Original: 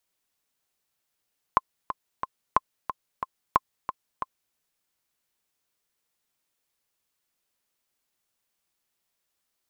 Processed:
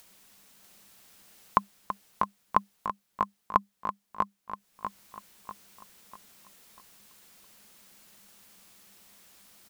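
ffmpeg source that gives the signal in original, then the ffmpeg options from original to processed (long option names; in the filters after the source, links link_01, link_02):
-f lavfi -i "aevalsrc='pow(10,(-5-10.5*gte(mod(t,3*60/181),60/181))/20)*sin(2*PI*1050*mod(t,60/181))*exp(-6.91*mod(t,60/181)/0.03)':duration=2.98:sample_rate=44100"
-filter_complex "[0:a]acompressor=mode=upward:threshold=-40dB:ratio=2.5,equalizer=frequency=200:width=7.3:gain=14.5,asplit=2[link_01][link_02];[link_02]aecho=0:1:644|1288|1932|2576|3220:0.562|0.231|0.0945|0.0388|0.0159[link_03];[link_01][link_03]amix=inputs=2:normalize=0"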